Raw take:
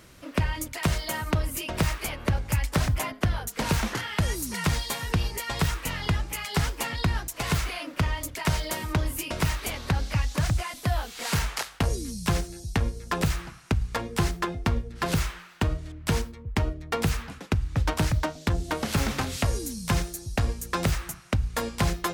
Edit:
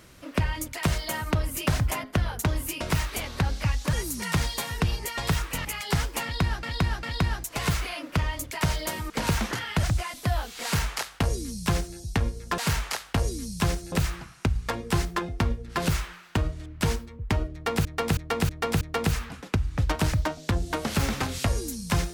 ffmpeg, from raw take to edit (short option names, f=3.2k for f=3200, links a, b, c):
-filter_complex "[0:a]asplit=15[a][b][c][d][e][f][g][h][i][j][k][l][m][n][o];[a]atrim=end=1.672[p];[b]atrim=start=2.748:end=3.522[q];[c]atrim=start=8.938:end=10.432[r];[d]atrim=start=4.248:end=5.972[s];[e]atrim=start=6.288:end=7.272[t];[f]atrim=start=6.868:end=7.272[u];[g]atrim=start=6.868:end=8.942[v];[h]atrim=start=3.518:end=4.252[w];[i]atrim=start=10.428:end=13.182[x];[j]atrim=start=11.238:end=12.582[y];[k]atrim=start=13.178:end=17.112[z];[l]atrim=start=16.788:end=17.112[aa];[m]atrim=start=16.788:end=17.112[ab];[n]atrim=start=16.788:end=17.112[ac];[o]atrim=start=16.788[ad];[p][q]acrossfade=d=0.004:c1=hsin:c2=hsin[ae];[ae][r]acrossfade=d=0.004:c1=hsin:c2=hsin[af];[af][s]acrossfade=d=0.004:c1=hsin:c2=hsin[ag];[ag][t]acrossfade=d=0.004:c1=hsin:c2=hsin[ah];[ah][u]acrossfade=d=0.004:c1=hsin:c2=hsin[ai];[ai][v]acrossfade=d=0.004:c1=hsin:c2=hsin[aj];[aj][w]acrossfade=d=0.004:c1=hsin:c2=hsin[ak];[ak][x]acrossfade=d=0.004:c1=hsin:c2=hsin[al];[al][y]acrossfade=d=0.004:c1=hsin:c2=hsin[am];[am][z]acrossfade=d=0.004:c1=hsin:c2=hsin[an];[an][aa]acrossfade=d=0.004:c1=hsin:c2=hsin[ao];[ao][ab]acrossfade=d=0.004:c1=hsin:c2=hsin[ap];[ap][ac]acrossfade=d=0.004:c1=hsin:c2=hsin[aq];[aq][ad]acrossfade=d=0.004:c1=hsin:c2=hsin"